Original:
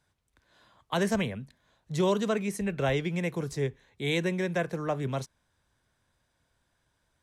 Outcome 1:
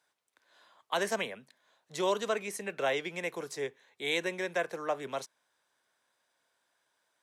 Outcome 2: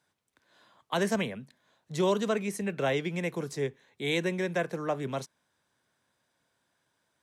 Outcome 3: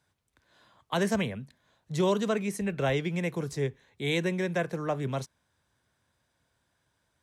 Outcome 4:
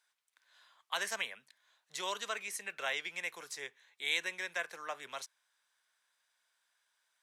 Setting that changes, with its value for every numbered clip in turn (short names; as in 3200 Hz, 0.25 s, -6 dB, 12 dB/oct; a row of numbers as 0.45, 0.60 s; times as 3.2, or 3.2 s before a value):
HPF, cutoff: 470, 180, 68, 1300 Hz